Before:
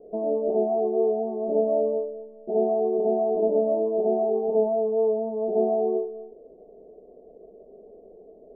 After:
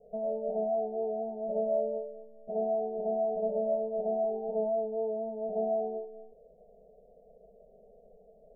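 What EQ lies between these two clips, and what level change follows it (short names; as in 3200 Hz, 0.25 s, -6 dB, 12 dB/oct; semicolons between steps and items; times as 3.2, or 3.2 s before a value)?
low shelf 160 Hz +6 dB; fixed phaser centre 300 Hz, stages 6; fixed phaser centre 830 Hz, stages 4; -2.5 dB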